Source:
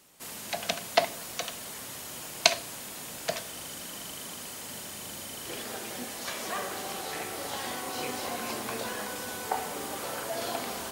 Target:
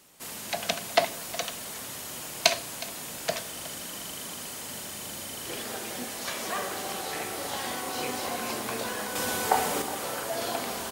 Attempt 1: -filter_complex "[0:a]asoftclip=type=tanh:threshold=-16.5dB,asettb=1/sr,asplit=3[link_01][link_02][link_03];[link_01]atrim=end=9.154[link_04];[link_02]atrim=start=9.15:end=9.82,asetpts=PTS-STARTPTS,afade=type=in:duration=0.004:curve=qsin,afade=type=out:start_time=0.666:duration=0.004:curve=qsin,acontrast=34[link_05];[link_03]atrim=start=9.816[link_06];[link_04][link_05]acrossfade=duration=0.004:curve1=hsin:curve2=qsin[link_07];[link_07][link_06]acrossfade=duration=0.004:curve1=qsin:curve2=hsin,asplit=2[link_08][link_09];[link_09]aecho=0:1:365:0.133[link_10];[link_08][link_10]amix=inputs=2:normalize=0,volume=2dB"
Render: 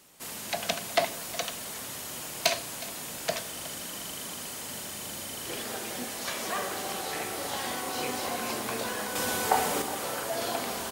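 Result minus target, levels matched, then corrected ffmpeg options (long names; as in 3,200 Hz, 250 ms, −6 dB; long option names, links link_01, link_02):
soft clipping: distortion +8 dB
-filter_complex "[0:a]asoftclip=type=tanh:threshold=-8dB,asettb=1/sr,asplit=3[link_01][link_02][link_03];[link_01]atrim=end=9.154[link_04];[link_02]atrim=start=9.15:end=9.82,asetpts=PTS-STARTPTS,afade=type=in:duration=0.004:curve=qsin,afade=type=out:start_time=0.666:duration=0.004:curve=qsin,acontrast=34[link_05];[link_03]atrim=start=9.816[link_06];[link_04][link_05]acrossfade=duration=0.004:curve1=hsin:curve2=qsin[link_07];[link_07][link_06]acrossfade=duration=0.004:curve1=qsin:curve2=hsin,asplit=2[link_08][link_09];[link_09]aecho=0:1:365:0.133[link_10];[link_08][link_10]amix=inputs=2:normalize=0,volume=2dB"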